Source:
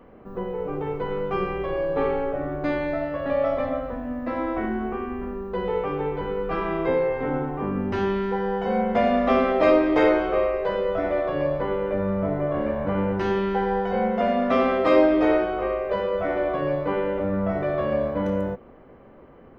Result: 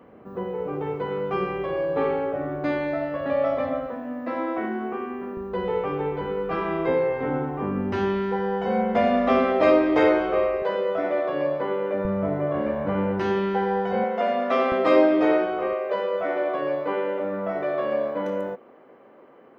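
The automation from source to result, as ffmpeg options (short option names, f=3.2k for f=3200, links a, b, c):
-af "asetnsamples=n=441:p=0,asendcmd='3.87 highpass f 220;5.37 highpass f 69;10.62 highpass f 220;12.05 highpass f 100;14.04 highpass f 350;14.72 highpass f 150;15.73 highpass f 310',highpass=99"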